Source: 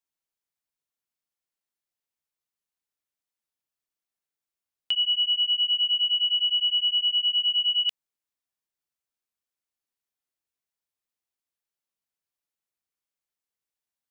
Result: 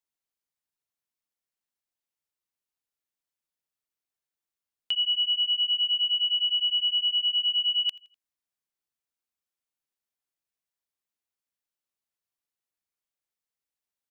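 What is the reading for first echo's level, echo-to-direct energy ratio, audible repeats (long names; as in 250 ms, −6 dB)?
−24.0 dB, −23.0 dB, 2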